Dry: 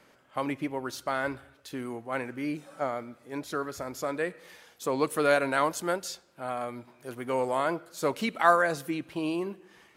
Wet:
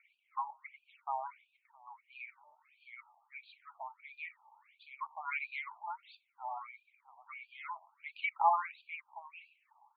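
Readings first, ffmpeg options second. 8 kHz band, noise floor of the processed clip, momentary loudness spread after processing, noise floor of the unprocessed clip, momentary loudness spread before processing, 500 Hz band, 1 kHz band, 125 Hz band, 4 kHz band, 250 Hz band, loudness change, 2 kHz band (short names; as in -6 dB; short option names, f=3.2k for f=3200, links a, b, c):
under -40 dB, -79 dBFS, 19 LU, -61 dBFS, 15 LU, -23.5 dB, -6.0 dB, under -40 dB, -15.5 dB, under -40 dB, -9.5 dB, -10.5 dB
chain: -filter_complex "[0:a]aphaser=in_gain=1:out_gain=1:delay=3.6:decay=0.44:speed=1:type=triangular,asplit=3[a][b][c];[a]bandpass=f=300:t=q:w=8,volume=0dB[d];[b]bandpass=f=870:t=q:w=8,volume=-6dB[e];[c]bandpass=f=2.24k:t=q:w=8,volume=-9dB[f];[d][e][f]amix=inputs=3:normalize=0,afftfilt=real='re*between(b*sr/1024,810*pow(3400/810,0.5+0.5*sin(2*PI*1.5*pts/sr))/1.41,810*pow(3400/810,0.5+0.5*sin(2*PI*1.5*pts/sr))*1.41)':imag='im*between(b*sr/1024,810*pow(3400/810,0.5+0.5*sin(2*PI*1.5*pts/sr))/1.41,810*pow(3400/810,0.5+0.5*sin(2*PI*1.5*pts/sr))*1.41)':win_size=1024:overlap=0.75,volume=11dB"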